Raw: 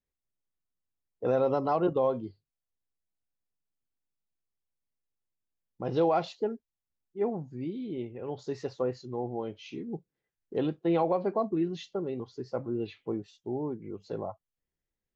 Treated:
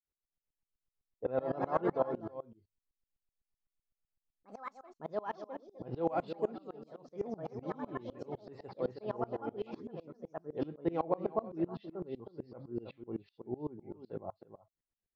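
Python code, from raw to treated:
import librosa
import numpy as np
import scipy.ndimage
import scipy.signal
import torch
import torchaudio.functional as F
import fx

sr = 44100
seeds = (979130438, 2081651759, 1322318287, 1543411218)

p1 = scipy.signal.sosfilt(scipy.signal.ellip(4, 1.0, 40, 5000.0, 'lowpass', fs=sr, output='sos'), x)
p2 = fx.high_shelf(p1, sr, hz=3100.0, db=-11.5)
p3 = p2 + fx.echo_single(p2, sr, ms=317, db=-11.5, dry=0)
p4 = fx.echo_pitch(p3, sr, ms=395, semitones=4, count=2, db_per_echo=-6.0)
p5 = fx.tremolo_decay(p4, sr, direction='swelling', hz=7.9, depth_db=25)
y = p5 * librosa.db_to_amplitude(1.0)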